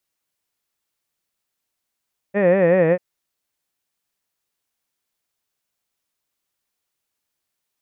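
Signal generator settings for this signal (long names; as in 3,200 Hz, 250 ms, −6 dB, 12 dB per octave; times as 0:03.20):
vowel by formant synthesis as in head, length 0.64 s, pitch 193 Hz, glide −2.5 semitones, vibrato depth 1.35 semitones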